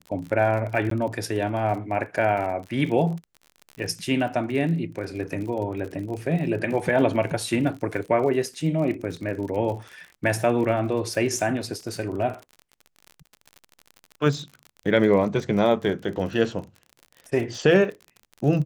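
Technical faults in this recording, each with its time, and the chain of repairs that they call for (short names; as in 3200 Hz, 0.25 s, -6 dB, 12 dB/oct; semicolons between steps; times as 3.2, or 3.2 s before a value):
crackle 44/s -32 dBFS
0.9–0.91 gap 13 ms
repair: de-click; interpolate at 0.9, 13 ms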